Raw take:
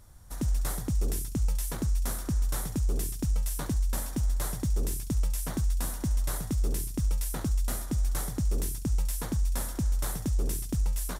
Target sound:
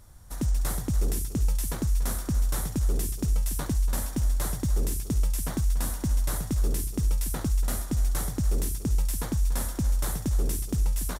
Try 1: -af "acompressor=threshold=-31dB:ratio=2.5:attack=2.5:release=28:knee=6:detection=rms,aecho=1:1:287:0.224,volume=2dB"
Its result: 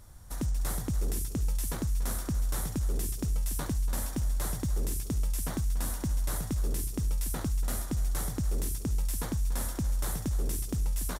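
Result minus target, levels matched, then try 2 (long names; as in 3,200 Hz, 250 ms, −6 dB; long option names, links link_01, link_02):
downward compressor: peak gain reduction +6 dB
-af "aecho=1:1:287:0.224,volume=2dB"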